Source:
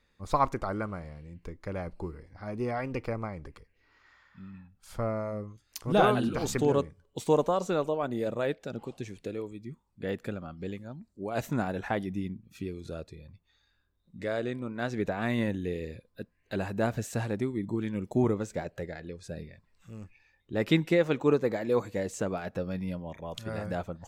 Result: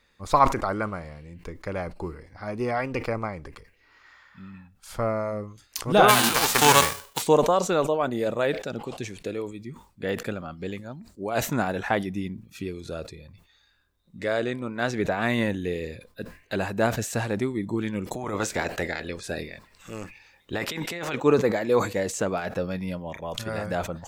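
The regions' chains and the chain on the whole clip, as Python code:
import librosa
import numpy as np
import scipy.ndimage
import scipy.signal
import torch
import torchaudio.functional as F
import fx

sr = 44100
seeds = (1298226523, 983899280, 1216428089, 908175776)

y = fx.envelope_flatten(x, sr, power=0.3, at=(6.08, 7.21), fade=0.02)
y = fx.peak_eq(y, sr, hz=1000.0, db=5.5, octaves=1.0, at=(6.08, 7.21), fade=0.02)
y = fx.spec_clip(y, sr, under_db=13, at=(18.05, 21.14), fade=0.02)
y = fx.over_compress(y, sr, threshold_db=-32.0, ratio=-1.0, at=(18.05, 21.14), fade=0.02)
y = fx.low_shelf(y, sr, hz=440.0, db=-6.5)
y = fx.sustainer(y, sr, db_per_s=130.0)
y = y * 10.0 ** (8.0 / 20.0)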